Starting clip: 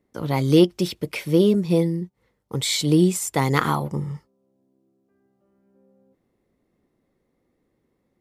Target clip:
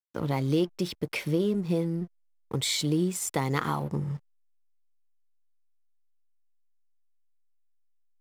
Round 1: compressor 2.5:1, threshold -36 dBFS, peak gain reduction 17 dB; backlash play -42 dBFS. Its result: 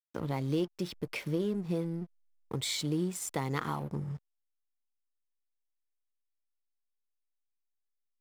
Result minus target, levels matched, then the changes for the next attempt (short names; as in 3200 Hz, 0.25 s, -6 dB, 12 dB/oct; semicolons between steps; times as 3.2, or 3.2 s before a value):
compressor: peak gain reduction +5.5 dB
change: compressor 2.5:1, threshold -27 dBFS, peak gain reduction 11.5 dB